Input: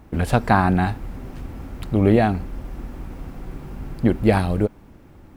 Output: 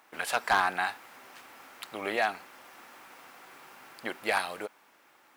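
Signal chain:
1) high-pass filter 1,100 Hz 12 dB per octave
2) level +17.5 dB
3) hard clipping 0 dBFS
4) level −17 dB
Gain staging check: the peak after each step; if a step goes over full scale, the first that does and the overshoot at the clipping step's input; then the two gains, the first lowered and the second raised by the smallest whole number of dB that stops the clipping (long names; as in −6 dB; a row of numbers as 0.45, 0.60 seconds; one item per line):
−8.0, +9.5, 0.0, −17.0 dBFS
step 2, 9.5 dB
step 2 +7.5 dB, step 4 −7 dB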